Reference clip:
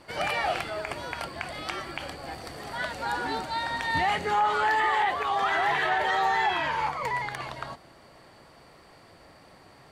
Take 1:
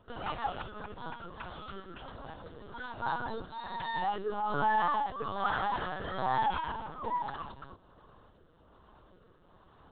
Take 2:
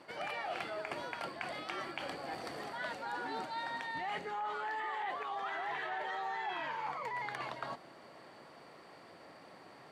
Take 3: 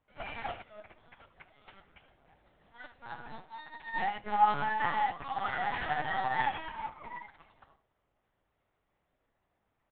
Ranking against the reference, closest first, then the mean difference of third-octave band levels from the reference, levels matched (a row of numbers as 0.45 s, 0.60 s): 2, 1, 3; 4.5 dB, 8.5 dB, 12.5 dB